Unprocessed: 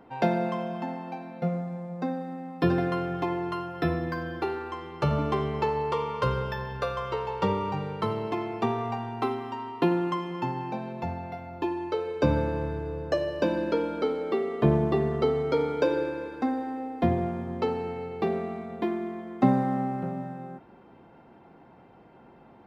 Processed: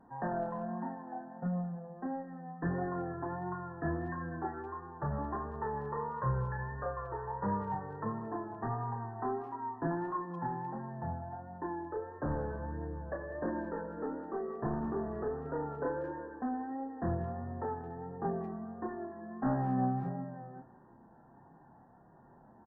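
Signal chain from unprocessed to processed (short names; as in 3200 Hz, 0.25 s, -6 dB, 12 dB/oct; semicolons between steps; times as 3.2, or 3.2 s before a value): comb 1.1 ms, depth 36%; soft clip -21 dBFS, distortion -12 dB; chorus voices 6, 0.21 Hz, delay 28 ms, depth 4.9 ms; vibrato 1.5 Hz 45 cents; brick-wall FIR low-pass 1900 Hz; speakerphone echo 0.19 s, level -18 dB; gain -3.5 dB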